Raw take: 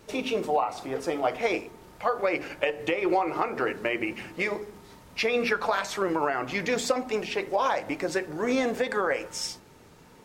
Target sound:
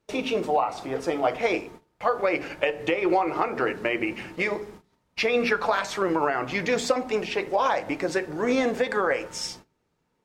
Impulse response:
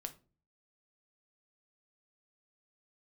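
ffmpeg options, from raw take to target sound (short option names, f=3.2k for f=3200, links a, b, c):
-filter_complex "[0:a]agate=range=-23dB:threshold=-45dB:ratio=16:detection=peak,highshelf=f=9.5k:g=-8.5,asplit=2[a][b];[1:a]atrim=start_sample=2205[c];[b][c]afir=irnorm=-1:irlink=0,volume=-6.5dB[d];[a][d]amix=inputs=2:normalize=0"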